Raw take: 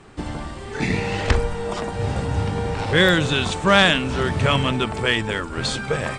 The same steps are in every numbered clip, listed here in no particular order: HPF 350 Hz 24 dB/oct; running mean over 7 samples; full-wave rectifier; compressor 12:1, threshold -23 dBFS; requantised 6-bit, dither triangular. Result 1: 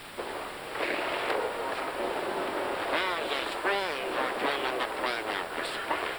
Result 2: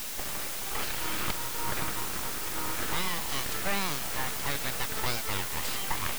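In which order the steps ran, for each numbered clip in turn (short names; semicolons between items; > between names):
full-wave rectifier > HPF > compressor > requantised > running mean; running mean > compressor > HPF > requantised > full-wave rectifier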